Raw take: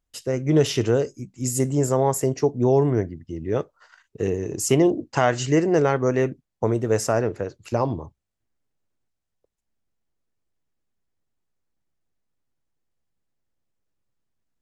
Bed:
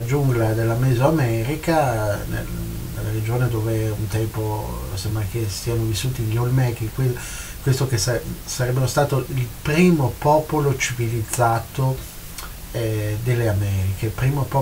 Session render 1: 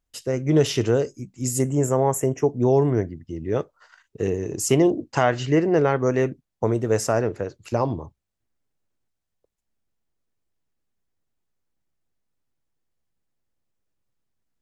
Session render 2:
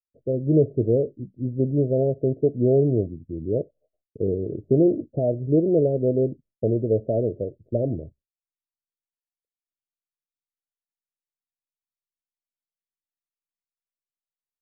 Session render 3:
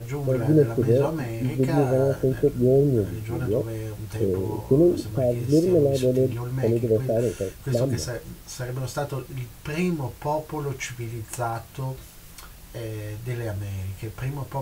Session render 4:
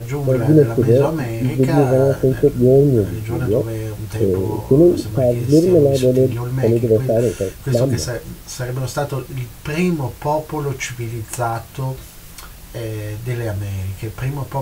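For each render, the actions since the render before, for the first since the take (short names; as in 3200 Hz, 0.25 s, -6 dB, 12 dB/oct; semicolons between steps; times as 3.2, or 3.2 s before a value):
1.62–2.5 Butterworth band-stop 4300 Hz, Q 1.5; 5.23–5.99 LPF 4100 Hz
expander -46 dBFS; steep low-pass 650 Hz 96 dB/oct
add bed -10 dB
gain +7 dB; limiter -2 dBFS, peak gain reduction 1.5 dB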